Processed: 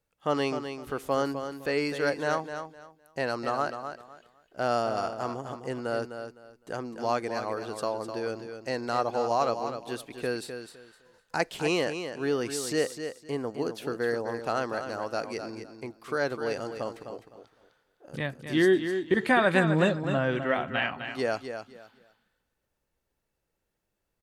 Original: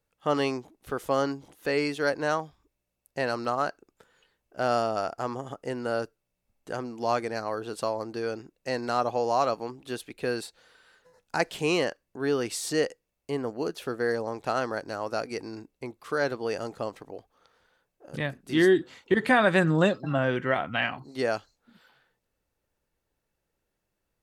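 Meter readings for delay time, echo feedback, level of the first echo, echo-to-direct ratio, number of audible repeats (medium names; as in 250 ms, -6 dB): 255 ms, 23%, -8.5 dB, -8.5 dB, 3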